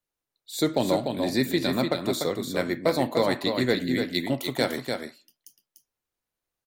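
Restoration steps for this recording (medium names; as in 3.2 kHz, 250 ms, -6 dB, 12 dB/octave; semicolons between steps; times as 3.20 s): clip repair -12 dBFS; inverse comb 295 ms -5.5 dB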